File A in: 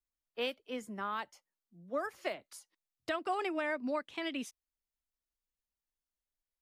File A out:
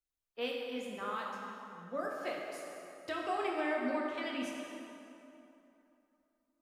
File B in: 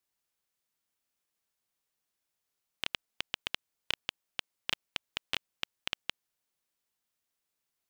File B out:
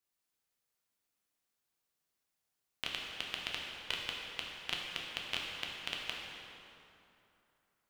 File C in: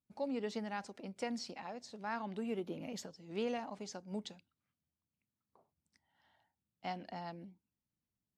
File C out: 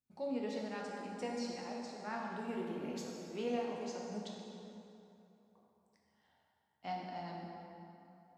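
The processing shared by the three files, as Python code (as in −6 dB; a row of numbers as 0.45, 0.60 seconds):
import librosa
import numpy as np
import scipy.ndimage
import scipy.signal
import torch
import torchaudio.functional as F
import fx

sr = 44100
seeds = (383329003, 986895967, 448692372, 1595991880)

y = fx.rev_plate(x, sr, seeds[0], rt60_s=3.0, hf_ratio=0.65, predelay_ms=0, drr_db=-2.5)
y = F.gain(torch.from_numpy(y), -4.5).numpy()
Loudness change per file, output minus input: −0.5, −1.0, +0.5 LU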